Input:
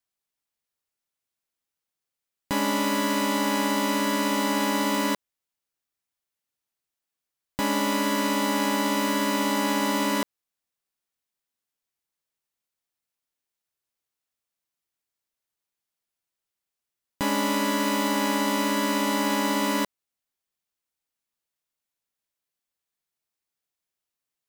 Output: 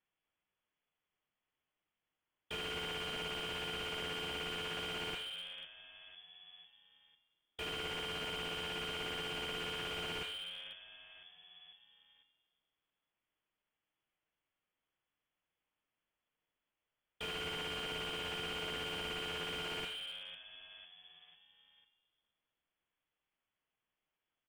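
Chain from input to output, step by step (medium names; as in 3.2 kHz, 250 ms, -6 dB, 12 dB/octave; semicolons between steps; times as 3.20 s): peak limiter -25.5 dBFS, peak gain reduction 11.5 dB; frequency-shifting echo 499 ms, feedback 49%, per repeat -98 Hz, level -21 dB; reverberation RT60 1.1 s, pre-delay 6 ms, DRR 8.5 dB; frequency inversion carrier 3.4 kHz; slew-rate limiter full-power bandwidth 17 Hz; trim +2.5 dB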